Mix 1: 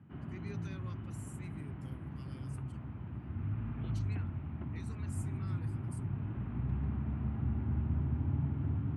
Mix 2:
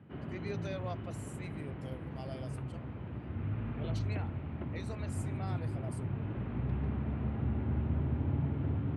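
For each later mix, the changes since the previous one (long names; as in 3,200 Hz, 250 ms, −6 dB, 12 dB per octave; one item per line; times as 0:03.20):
speech: remove Butterworth band-reject 730 Hz, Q 1.2
master: add octave-band graphic EQ 500/2,000/4,000 Hz +12/+4/+8 dB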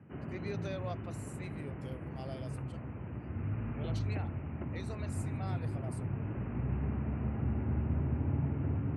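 background: add Butterworth low-pass 2,900 Hz 96 dB per octave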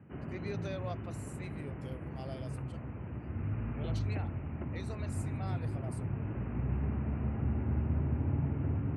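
master: remove high-pass filter 60 Hz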